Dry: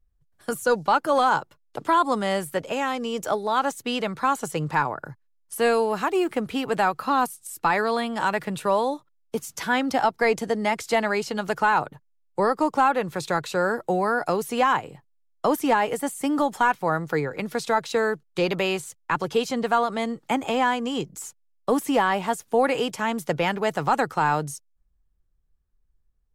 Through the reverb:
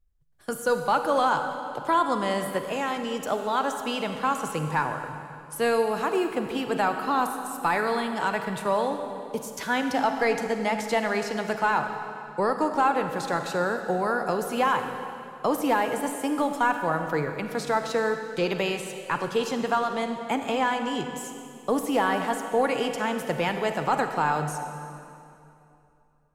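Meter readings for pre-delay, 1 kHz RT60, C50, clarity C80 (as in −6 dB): 34 ms, 2.7 s, 6.5 dB, 7.5 dB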